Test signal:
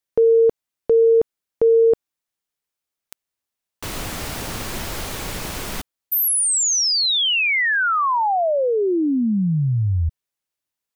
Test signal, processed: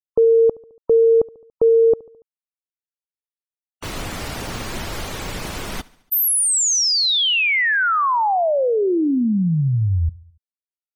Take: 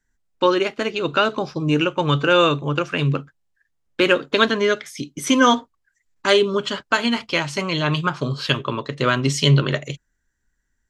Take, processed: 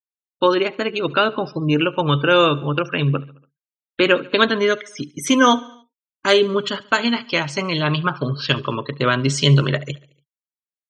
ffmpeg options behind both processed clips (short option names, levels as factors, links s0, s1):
-filter_complex "[0:a]afftfilt=real='re*gte(hypot(re,im),0.02)':imag='im*gte(hypot(re,im),0.02)':win_size=1024:overlap=0.75,asplit=2[s0][s1];[s1]aecho=0:1:71|142|213|284:0.075|0.0435|0.0252|0.0146[s2];[s0][s2]amix=inputs=2:normalize=0,volume=1.12"